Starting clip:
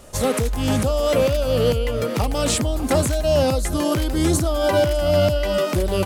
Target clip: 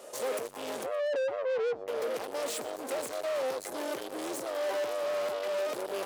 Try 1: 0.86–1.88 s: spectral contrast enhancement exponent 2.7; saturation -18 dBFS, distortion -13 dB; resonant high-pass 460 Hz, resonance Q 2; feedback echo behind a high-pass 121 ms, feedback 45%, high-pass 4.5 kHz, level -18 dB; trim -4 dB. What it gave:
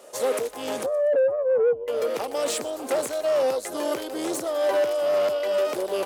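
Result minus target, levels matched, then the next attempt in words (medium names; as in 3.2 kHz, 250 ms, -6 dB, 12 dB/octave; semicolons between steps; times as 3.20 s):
saturation: distortion -7 dB
0.86–1.88 s: spectral contrast enhancement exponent 2.7; saturation -30 dBFS, distortion -5 dB; resonant high-pass 460 Hz, resonance Q 2; feedback echo behind a high-pass 121 ms, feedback 45%, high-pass 4.5 kHz, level -18 dB; trim -4 dB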